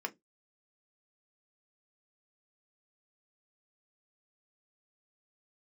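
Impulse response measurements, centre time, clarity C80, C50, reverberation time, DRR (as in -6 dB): 5 ms, 35.0 dB, 25.5 dB, 0.15 s, 4.5 dB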